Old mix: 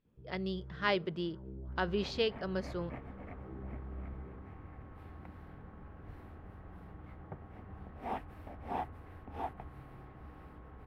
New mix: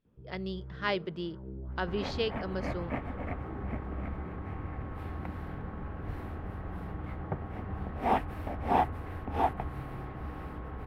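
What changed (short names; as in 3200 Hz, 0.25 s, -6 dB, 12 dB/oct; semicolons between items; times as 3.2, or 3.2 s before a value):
first sound +4.0 dB; second sound +11.5 dB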